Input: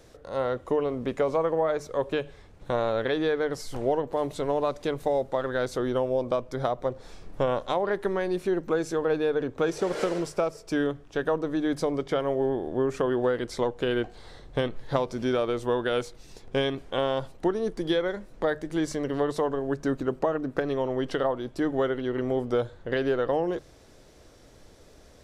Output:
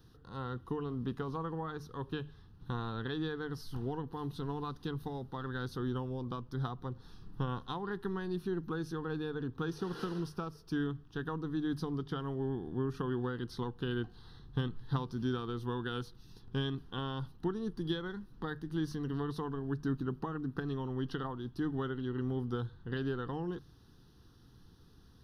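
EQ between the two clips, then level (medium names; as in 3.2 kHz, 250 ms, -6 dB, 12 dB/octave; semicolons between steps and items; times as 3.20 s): peaking EQ 140 Hz +9 dB 1.9 oct; treble shelf 7.9 kHz +5 dB; static phaser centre 2.2 kHz, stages 6; -8.0 dB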